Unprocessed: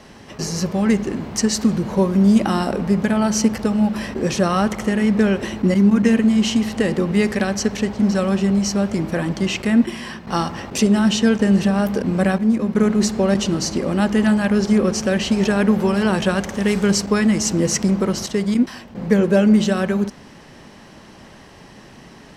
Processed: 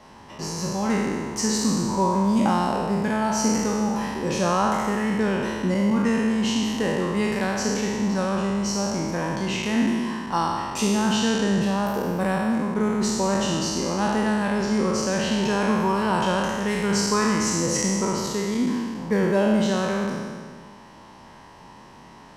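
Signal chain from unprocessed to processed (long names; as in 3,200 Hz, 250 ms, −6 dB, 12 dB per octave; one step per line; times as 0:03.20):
peak hold with a decay on every bin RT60 1.83 s
parametric band 950 Hz +12.5 dB 0.41 octaves
level −9 dB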